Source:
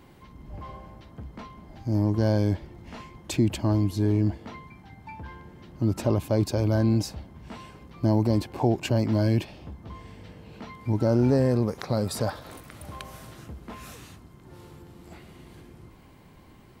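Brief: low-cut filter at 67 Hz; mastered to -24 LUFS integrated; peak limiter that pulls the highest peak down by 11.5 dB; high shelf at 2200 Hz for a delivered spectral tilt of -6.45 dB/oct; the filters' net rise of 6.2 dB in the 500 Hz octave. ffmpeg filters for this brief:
-af "highpass=67,equalizer=f=500:t=o:g=7.5,highshelf=f=2.2k:g=4,volume=6.5dB,alimiter=limit=-11dB:level=0:latency=1"

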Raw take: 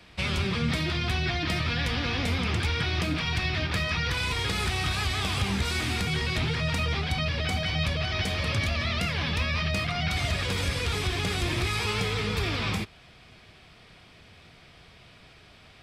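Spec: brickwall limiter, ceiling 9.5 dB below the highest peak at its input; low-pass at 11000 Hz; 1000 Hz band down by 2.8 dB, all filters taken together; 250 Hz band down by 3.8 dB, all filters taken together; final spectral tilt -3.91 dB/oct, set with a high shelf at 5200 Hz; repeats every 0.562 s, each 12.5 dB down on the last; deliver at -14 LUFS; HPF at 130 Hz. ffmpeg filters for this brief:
-af "highpass=130,lowpass=11k,equalizer=f=250:t=o:g=-4.5,equalizer=f=1k:t=o:g=-3.5,highshelf=f=5.2k:g=-4,alimiter=level_in=2.5dB:limit=-24dB:level=0:latency=1,volume=-2.5dB,aecho=1:1:562|1124|1686:0.237|0.0569|0.0137,volume=20dB"

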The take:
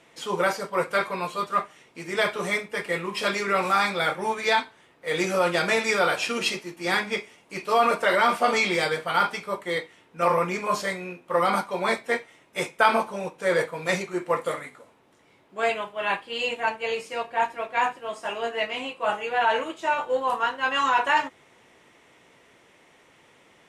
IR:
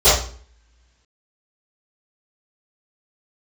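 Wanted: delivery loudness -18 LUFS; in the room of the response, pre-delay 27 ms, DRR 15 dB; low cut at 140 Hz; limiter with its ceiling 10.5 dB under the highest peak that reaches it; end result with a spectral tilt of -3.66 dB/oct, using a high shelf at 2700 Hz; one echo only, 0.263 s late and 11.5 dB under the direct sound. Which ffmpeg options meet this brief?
-filter_complex "[0:a]highpass=140,highshelf=f=2.7k:g=-3.5,alimiter=limit=-16.5dB:level=0:latency=1,aecho=1:1:263:0.266,asplit=2[a][b];[1:a]atrim=start_sample=2205,adelay=27[c];[b][c]afir=irnorm=-1:irlink=0,volume=-40.5dB[d];[a][d]amix=inputs=2:normalize=0,volume=10dB"

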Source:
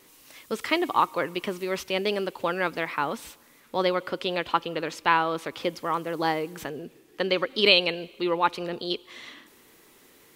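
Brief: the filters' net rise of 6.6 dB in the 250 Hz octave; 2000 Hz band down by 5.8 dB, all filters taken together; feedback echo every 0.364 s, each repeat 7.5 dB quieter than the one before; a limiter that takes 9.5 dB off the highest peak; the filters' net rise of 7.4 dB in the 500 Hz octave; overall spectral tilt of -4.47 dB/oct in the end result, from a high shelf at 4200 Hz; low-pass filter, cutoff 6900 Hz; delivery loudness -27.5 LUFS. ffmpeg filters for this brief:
-af "lowpass=6.9k,equalizer=f=250:t=o:g=6.5,equalizer=f=500:t=o:g=7.5,equalizer=f=2k:t=o:g=-7,highshelf=f=4.2k:g=-5.5,alimiter=limit=-14.5dB:level=0:latency=1,aecho=1:1:364|728|1092|1456|1820:0.422|0.177|0.0744|0.0312|0.0131,volume=-2dB"

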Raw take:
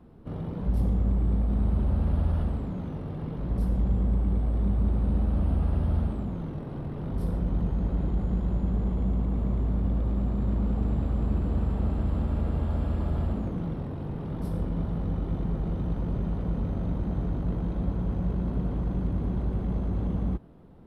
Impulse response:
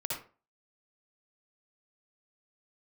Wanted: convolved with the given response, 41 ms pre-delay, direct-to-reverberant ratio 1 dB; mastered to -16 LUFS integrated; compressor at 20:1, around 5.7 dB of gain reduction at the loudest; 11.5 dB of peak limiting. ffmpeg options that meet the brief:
-filter_complex "[0:a]acompressor=threshold=-26dB:ratio=20,alimiter=level_in=8dB:limit=-24dB:level=0:latency=1,volume=-8dB,asplit=2[a][b];[1:a]atrim=start_sample=2205,adelay=41[c];[b][c]afir=irnorm=-1:irlink=0,volume=-4.5dB[d];[a][d]amix=inputs=2:normalize=0,volume=20.5dB"

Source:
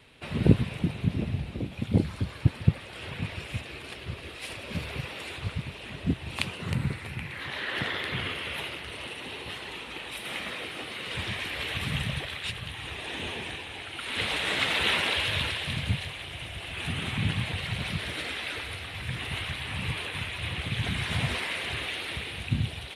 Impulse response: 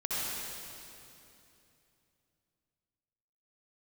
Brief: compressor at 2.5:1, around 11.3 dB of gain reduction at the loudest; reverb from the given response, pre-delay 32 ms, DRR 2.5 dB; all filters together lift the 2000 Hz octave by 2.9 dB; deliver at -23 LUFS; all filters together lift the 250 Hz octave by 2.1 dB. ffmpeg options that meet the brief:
-filter_complex "[0:a]equalizer=f=250:t=o:g=3,equalizer=f=2k:t=o:g=3.5,acompressor=threshold=-30dB:ratio=2.5,asplit=2[a][b];[1:a]atrim=start_sample=2205,adelay=32[c];[b][c]afir=irnorm=-1:irlink=0,volume=-9.5dB[d];[a][d]amix=inputs=2:normalize=0,volume=8dB"

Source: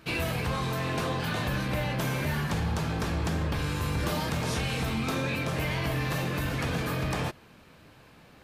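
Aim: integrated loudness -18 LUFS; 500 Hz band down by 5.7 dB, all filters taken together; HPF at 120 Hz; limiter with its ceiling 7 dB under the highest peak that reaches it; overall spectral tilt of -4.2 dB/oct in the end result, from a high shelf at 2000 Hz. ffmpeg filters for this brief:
-af "highpass=120,equalizer=f=500:t=o:g=-7.5,highshelf=f=2k:g=3,volume=14.5dB,alimiter=limit=-9dB:level=0:latency=1"

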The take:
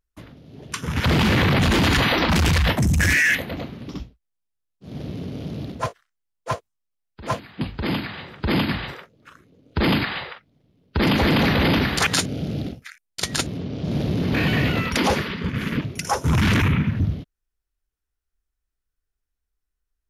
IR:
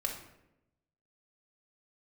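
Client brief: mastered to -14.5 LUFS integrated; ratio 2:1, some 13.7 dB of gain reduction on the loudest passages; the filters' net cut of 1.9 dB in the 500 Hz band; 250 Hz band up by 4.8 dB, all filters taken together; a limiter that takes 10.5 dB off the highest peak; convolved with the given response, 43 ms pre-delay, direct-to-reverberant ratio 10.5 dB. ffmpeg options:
-filter_complex "[0:a]equalizer=f=250:t=o:g=7.5,equalizer=f=500:t=o:g=-5.5,acompressor=threshold=-39dB:ratio=2,alimiter=level_in=3dB:limit=-24dB:level=0:latency=1,volume=-3dB,asplit=2[a][b];[1:a]atrim=start_sample=2205,adelay=43[c];[b][c]afir=irnorm=-1:irlink=0,volume=-13.5dB[d];[a][d]amix=inputs=2:normalize=0,volume=21.5dB"

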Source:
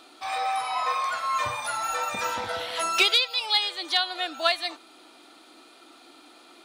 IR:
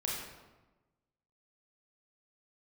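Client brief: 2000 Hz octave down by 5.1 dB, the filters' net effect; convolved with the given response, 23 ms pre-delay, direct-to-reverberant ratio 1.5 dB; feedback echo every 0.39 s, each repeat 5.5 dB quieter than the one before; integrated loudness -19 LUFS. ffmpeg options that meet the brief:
-filter_complex "[0:a]equalizer=f=2k:t=o:g=-7,aecho=1:1:390|780|1170|1560|1950|2340|2730:0.531|0.281|0.149|0.079|0.0419|0.0222|0.0118,asplit=2[a][b];[1:a]atrim=start_sample=2205,adelay=23[c];[b][c]afir=irnorm=-1:irlink=0,volume=-5.5dB[d];[a][d]amix=inputs=2:normalize=0,volume=5.5dB"

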